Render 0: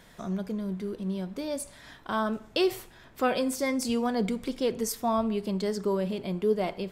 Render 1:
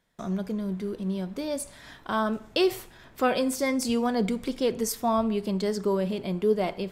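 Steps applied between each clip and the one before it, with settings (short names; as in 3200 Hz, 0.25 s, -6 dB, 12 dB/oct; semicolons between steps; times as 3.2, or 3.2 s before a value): gate with hold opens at -43 dBFS; gain +2 dB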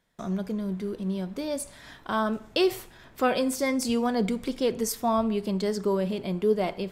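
nothing audible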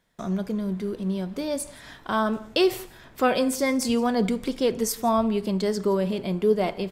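echo 0.169 s -22 dB; gain +2.5 dB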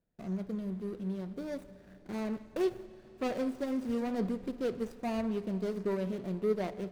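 median filter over 41 samples; reverb RT60 4.5 s, pre-delay 42 ms, DRR 16 dB; gain -8.5 dB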